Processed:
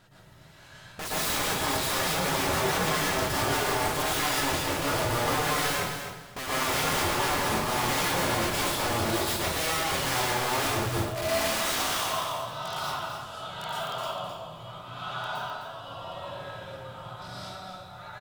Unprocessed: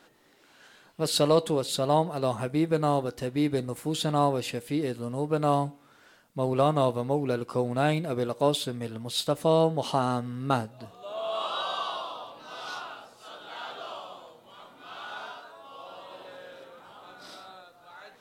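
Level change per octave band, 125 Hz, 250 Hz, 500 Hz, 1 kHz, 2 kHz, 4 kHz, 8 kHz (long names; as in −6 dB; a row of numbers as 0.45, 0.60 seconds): −3.0, −4.5, −4.0, +2.0, +11.5, +5.5, +10.5 decibels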